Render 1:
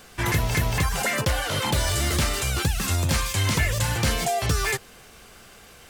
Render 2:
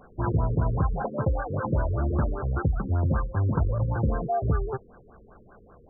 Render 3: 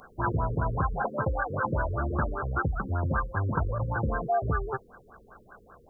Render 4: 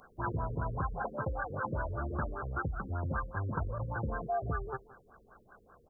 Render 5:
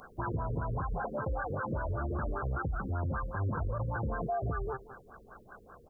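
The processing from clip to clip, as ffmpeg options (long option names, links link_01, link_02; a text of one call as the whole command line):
ffmpeg -i in.wav -af "aeval=exprs='val(0)+0.0158*sin(2*PI*1900*n/s)':channel_layout=same,afftfilt=real='re*lt(b*sr/1024,500*pow(1700/500,0.5+0.5*sin(2*PI*5.1*pts/sr)))':imag='im*lt(b*sr/1024,500*pow(1700/500,0.5+0.5*sin(2*PI*5.1*pts/sr)))':win_size=1024:overlap=0.75" out.wav
ffmpeg -i in.wav -af "tiltshelf=frequency=1200:gain=-10,volume=5dB" out.wav
ffmpeg -i in.wav -af "aecho=1:1:171:0.112,volume=-7dB" out.wav
ffmpeg -i in.wav -af "alimiter=level_in=9dB:limit=-24dB:level=0:latency=1:release=57,volume=-9dB,volume=6.5dB" out.wav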